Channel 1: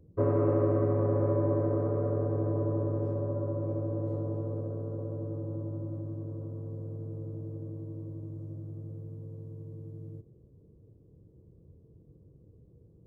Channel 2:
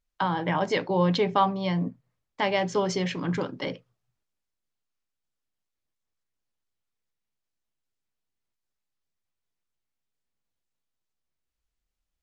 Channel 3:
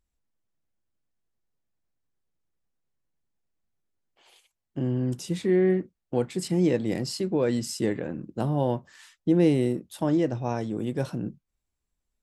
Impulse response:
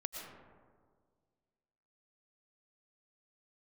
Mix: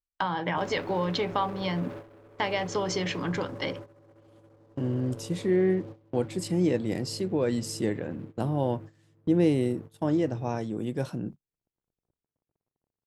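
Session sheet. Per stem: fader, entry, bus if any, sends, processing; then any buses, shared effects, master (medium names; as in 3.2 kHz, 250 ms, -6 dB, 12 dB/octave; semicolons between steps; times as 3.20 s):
-12.0 dB, 0.40 s, no send, bass shelf 110 Hz -10.5 dB; waveshaping leveller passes 5; compression 2.5:1, threshold -32 dBFS, peak gain reduction 9 dB
+2.5 dB, 0.00 s, no send, bass shelf 440 Hz -5 dB; compression 3:1, threshold -28 dBFS, peak gain reduction 8 dB
-2.0 dB, 0.00 s, no send, vibrato 1.8 Hz 8.5 cents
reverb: none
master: gate -39 dBFS, range -19 dB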